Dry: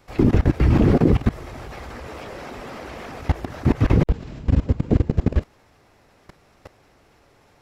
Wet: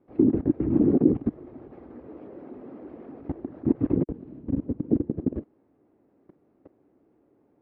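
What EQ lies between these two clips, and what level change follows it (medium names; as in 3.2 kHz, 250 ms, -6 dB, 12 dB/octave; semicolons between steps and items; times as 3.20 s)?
band-pass filter 300 Hz, Q 2.6; distance through air 210 m; +1.5 dB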